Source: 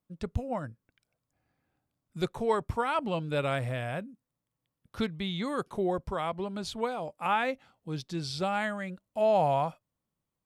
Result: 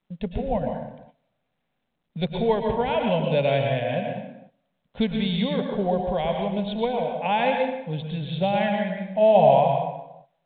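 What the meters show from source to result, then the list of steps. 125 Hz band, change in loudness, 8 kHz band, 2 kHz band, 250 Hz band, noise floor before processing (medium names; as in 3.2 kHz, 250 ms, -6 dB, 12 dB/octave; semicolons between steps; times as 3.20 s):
+7.5 dB, +8.0 dB, under -30 dB, +4.0 dB, +8.5 dB, under -85 dBFS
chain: static phaser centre 340 Hz, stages 6; plate-style reverb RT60 0.92 s, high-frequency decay 0.75×, pre-delay 95 ms, DRR 2 dB; gate -57 dBFS, range -15 dB; trim +8.5 dB; µ-law 64 kbps 8 kHz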